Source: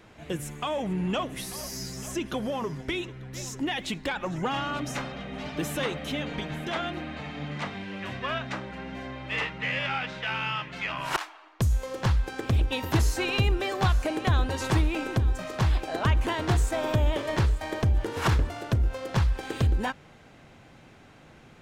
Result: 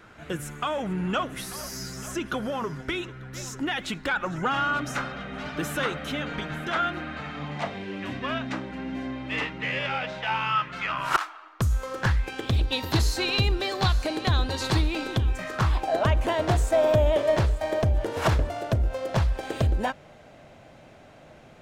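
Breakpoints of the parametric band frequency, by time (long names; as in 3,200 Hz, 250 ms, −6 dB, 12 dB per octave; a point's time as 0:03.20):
parametric band +11 dB 0.45 octaves
0:07.33 1,400 Hz
0:08.02 280 Hz
0:09.53 280 Hz
0:10.57 1,300 Hz
0:11.95 1,300 Hz
0:12.57 4,200 Hz
0:15.08 4,200 Hz
0:15.96 620 Hz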